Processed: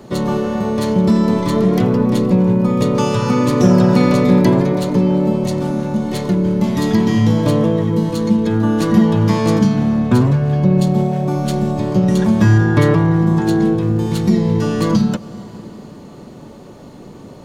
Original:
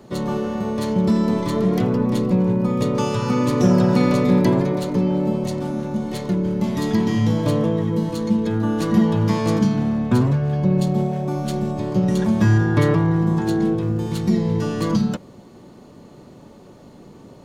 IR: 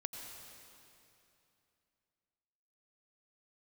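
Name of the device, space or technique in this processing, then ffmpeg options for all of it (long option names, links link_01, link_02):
ducked reverb: -filter_complex "[0:a]asplit=3[link_01][link_02][link_03];[1:a]atrim=start_sample=2205[link_04];[link_02][link_04]afir=irnorm=-1:irlink=0[link_05];[link_03]apad=whole_len=769511[link_06];[link_05][link_06]sidechaincompress=threshold=-23dB:ratio=8:attack=16:release=702,volume=-4.5dB[link_07];[link_01][link_07]amix=inputs=2:normalize=0,volume=3.5dB"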